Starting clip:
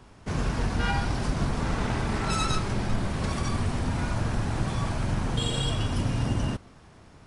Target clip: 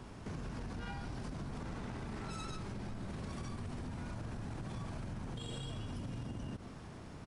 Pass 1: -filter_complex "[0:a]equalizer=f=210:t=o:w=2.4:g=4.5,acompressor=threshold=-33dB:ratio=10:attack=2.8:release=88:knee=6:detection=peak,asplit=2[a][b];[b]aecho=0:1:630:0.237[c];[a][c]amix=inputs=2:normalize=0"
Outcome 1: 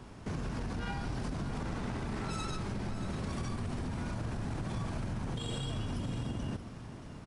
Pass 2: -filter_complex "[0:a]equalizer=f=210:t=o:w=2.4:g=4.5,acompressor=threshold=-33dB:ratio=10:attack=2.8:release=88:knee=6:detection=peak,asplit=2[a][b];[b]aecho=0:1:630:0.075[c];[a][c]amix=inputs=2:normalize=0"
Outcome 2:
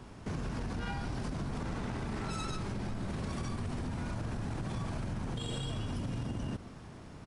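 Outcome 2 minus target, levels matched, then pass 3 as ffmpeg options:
compressor: peak gain reduction -6 dB
-filter_complex "[0:a]equalizer=f=210:t=o:w=2.4:g=4.5,acompressor=threshold=-39.5dB:ratio=10:attack=2.8:release=88:knee=6:detection=peak,asplit=2[a][b];[b]aecho=0:1:630:0.075[c];[a][c]amix=inputs=2:normalize=0"

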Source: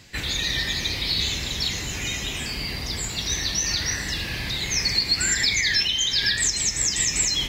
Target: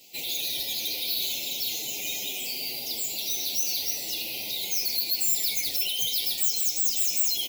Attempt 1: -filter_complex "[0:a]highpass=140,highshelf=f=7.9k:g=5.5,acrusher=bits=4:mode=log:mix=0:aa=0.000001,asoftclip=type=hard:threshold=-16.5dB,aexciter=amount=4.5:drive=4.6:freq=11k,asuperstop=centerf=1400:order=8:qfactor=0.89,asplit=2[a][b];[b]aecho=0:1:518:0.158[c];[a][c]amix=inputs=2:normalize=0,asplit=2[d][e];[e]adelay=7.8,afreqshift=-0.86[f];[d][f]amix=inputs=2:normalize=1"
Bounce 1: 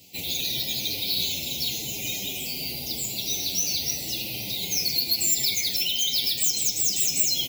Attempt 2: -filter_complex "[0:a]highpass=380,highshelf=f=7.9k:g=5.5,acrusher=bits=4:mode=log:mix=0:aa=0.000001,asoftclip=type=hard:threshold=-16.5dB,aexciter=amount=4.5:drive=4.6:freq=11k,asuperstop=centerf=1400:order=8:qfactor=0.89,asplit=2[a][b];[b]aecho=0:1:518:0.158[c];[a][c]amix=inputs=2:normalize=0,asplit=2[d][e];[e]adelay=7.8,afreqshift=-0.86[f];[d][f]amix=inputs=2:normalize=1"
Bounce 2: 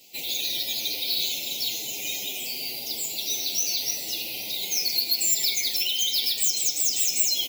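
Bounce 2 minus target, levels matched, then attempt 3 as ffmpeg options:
hard clip: distortion -9 dB
-filter_complex "[0:a]highpass=380,highshelf=f=7.9k:g=5.5,acrusher=bits=4:mode=log:mix=0:aa=0.000001,asoftclip=type=hard:threshold=-24.5dB,aexciter=amount=4.5:drive=4.6:freq=11k,asuperstop=centerf=1400:order=8:qfactor=0.89,asplit=2[a][b];[b]aecho=0:1:518:0.158[c];[a][c]amix=inputs=2:normalize=0,asplit=2[d][e];[e]adelay=7.8,afreqshift=-0.86[f];[d][f]amix=inputs=2:normalize=1"

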